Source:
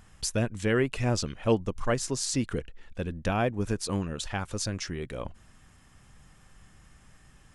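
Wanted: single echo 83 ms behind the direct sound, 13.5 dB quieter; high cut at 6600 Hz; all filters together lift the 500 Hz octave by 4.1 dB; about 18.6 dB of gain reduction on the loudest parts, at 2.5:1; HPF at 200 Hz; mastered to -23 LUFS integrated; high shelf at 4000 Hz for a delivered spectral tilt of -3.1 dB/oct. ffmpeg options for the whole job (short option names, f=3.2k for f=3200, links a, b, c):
-af "highpass=200,lowpass=6.6k,equalizer=f=500:t=o:g=5,highshelf=f=4k:g=8,acompressor=threshold=-45dB:ratio=2.5,aecho=1:1:83:0.211,volume=19.5dB"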